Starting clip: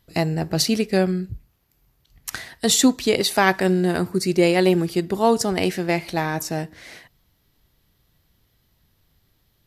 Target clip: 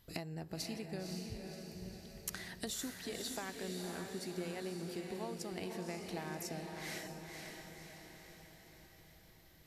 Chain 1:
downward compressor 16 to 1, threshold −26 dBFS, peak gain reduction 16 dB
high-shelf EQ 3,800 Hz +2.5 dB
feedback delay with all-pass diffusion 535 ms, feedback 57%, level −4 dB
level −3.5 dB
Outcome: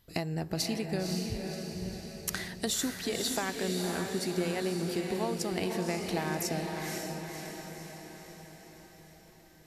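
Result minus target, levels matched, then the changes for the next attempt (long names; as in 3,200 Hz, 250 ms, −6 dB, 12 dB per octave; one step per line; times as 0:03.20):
downward compressor: peak gain reduction −10.5 dB
change: downward compressor 16 to 1, threshold −37 dBFS, peak gain reduction 26.5 dB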